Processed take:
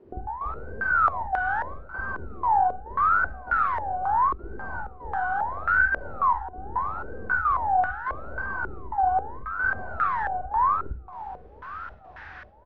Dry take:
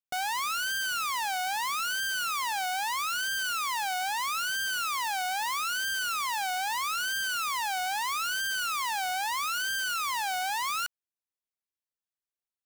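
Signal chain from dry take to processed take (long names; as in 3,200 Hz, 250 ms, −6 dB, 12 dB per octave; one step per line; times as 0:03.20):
linear delta modulator 32 kbit/s, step −47 dBFS
low-shelf EQ 110 Hz −12 dB
in parallel at −6 dB: soft clipping −36.5 dBFS, distortion −14 dB
on the sum: gate pattern "xx..xxxxxxxx.xx" 147 BPM −12 dB
double-tracking delay 47 ms −7.5 dB
repeating echo 1,006 ms, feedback 44%, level −17 dB
on a send at −3 dB: convolution reverb, pre-delay 46 ms
on the sum: low-pass on a step sequencer 3.7 Hz 380–1,600 Hz
level +1.5 dB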